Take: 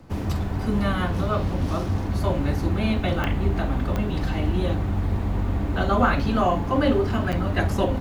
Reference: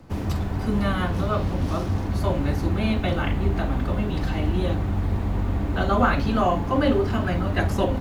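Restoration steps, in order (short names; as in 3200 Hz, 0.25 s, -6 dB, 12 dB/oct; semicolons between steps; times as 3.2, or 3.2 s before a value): de-click; interpolate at 7.32, 7.5 ms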